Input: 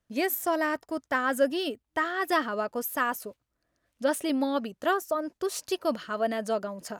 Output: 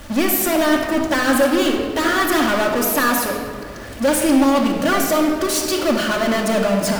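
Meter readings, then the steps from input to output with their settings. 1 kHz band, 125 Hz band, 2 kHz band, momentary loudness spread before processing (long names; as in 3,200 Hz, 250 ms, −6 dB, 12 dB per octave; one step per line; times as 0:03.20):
+9.0 dB, can't be measured, +10.5 dB, 5 LU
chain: power curve on the samples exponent 0.35
slack as between gear wheels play −42 dBFS
rectangular room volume 3,000 cubic metres, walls mixed, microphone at 2.4 metres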